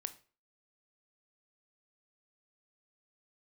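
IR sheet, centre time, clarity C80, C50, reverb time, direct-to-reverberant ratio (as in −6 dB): 4 ms, 21.0 dB, 15.5 dB, 0.40 s, 10.5 dB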